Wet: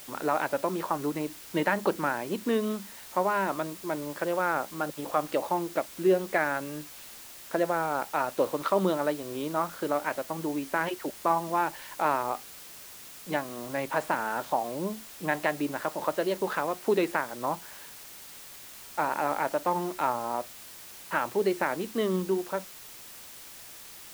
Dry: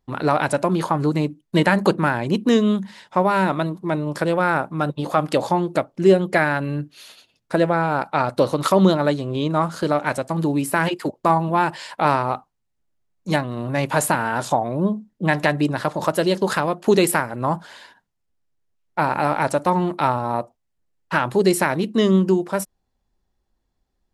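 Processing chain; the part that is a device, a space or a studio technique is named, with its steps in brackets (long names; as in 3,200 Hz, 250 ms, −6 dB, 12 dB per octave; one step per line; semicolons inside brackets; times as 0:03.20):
wax cylinder (band-pass filter 280–2,700 Hz; tape wow and flutter; white noise bed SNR 16 dB)
level −7.5 dB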